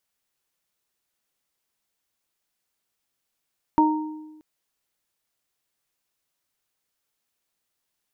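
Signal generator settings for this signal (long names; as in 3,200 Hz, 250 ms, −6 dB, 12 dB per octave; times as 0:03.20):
harmonic partials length 0.63 s, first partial 309 Hz, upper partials −16.5/1 dB, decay 1.19 s, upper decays 0.37/0.69 s, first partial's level −15.5 dB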